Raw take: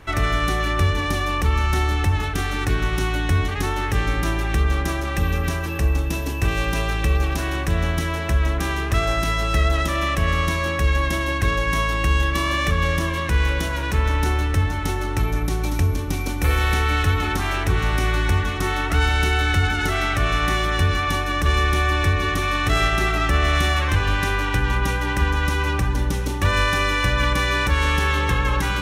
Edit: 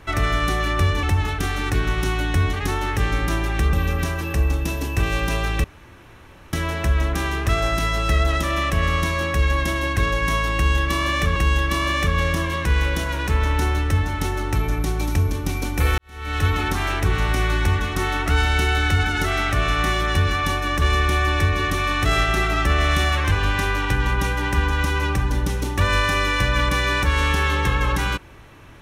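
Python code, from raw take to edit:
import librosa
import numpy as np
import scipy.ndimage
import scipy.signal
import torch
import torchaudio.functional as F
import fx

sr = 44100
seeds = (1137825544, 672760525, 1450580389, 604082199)

y = fx.edit(x, sr, fx.cut(start_s=1.03, length_s=0.95),
    fx.cut(start_s=4.68, length_s=0.5),
    fx.room_tone_fill(start_s=7.09, length_s=0.89),
    fx.repeat(start_s=12.0, length_s=0.81, count=2),
    fx.fade_in_span(start_s=16.62, length_s=0.47, curve='qua'), tone=tone)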